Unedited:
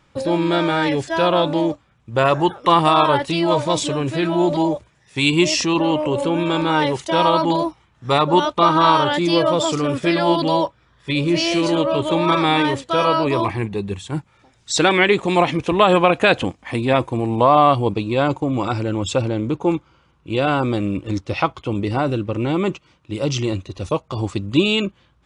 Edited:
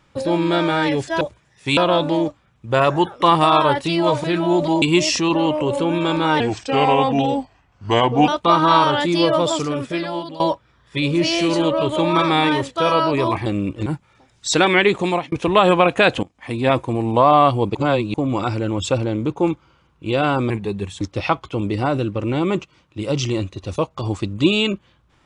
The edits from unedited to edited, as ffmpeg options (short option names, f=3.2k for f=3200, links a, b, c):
-filter_complex "[0:a]asplit=16[a][b][c][d][e][f][g][h][i][j][k][l][m][n][o][p];[a]atrim=end=1.212[q];[b]atrim=start=4.708:end=5.272[r];[c]atrim=start=1.208:end=3.682[s];[d]atrim=start=4.128:end=4.712[t];[e]atrim=start=5.268:end=6.854[u];[f]atrim=start=6.85:end=8.41,asetpts=PTS-STARTPTS,asetrate=36603,aresample=44100[v];[g]atrim=start=8.406:end=10.53,asetpts=PTS-STARTPTS,afade=t=out:st=1.144:d=0.98:silence=0.125893[w];[h]atrim=start=10.53:end=13.592,asetpts=PTS-STARTPTS,afade=t=in:d=0.004:c=hsin:silence=0.125893[x];[i]atrim=start=20.738:end=21.142[y];[j]atrim=start=14.098:end=15.56,asetpts=PTS-STARTPTS,afade=t=out:st=1.172:d=0.29[z];[k]atrim=start=15.56:end=16.47,asetpts=PTS-STARTPTS,afade=t=in:d=0.004:c=hsin,afade=t=out:st=0.906:d=0.004:c=hsin:silence=0.0944061[aa];[l]atrim=start=16.47:end=17.992,asetpts=PTS-STARTPTS,afade=t=in:d=0.45:silence=0.0944061[ab];[m]atrim=start=17.988:end=18.382,asetpts=PTS-STARTPTS,areverse[ac];[n]atrim=start=18.378:end=20.742[ad];[o]atrim=start=13.588:end=14.102[ae];[p]atrim=start=21.138[af];[q][r]acrossfade=d=0.004:c1=hsin:c2=hsin[ag];[ag][s]acrossfade=d=0.004:c1=hsin:c2=hsin[ah];[ah][t]acrossfade=d=0.004:c1=hsin:c2=hsin[ai];[ai][u]acrossfade=d=0.004:c1=hsin:c2=hsin[aj];[aj][v]acrossfade=d=0.004:c1=hsin:c2=hsin[ak];[w][x]concat=n=2:v=0:a=1[al];[ak][al]acrossfade=d=0.004:c1=hsin:c2=hsin[am];[am][y]acrossfade=d=0.004:c1=hsin:c2=hsin[an];[z][aa][ab]concat=n=3:v=0:a=1[ao];[an][ao]acrossfade=d=0.004:c1=hsin:c2=hsin[ap];[ap][ac]acrossfade=d=0.004:c1=hsin:c2=hsin[aq];[aq][ad]acrossfade=d=0.004:c1=hsin:c2=hsin[ar];[ar][ae]acrossfade=d=0.004:c1=hsin:c2=hsin[as];[as][af]acrossfade=d=0.004:c1=hsin:c2=hsin"